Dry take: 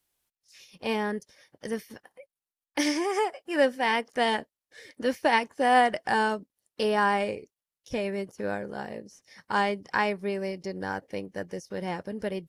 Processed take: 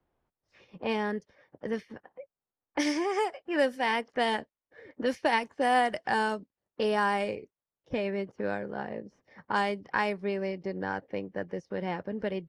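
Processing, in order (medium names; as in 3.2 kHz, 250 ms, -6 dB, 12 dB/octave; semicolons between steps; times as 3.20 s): level-controlled noise filter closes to 960 Hz, open at -20.5 dBFS; three bands compressed up and down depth 40%; trim -2 dB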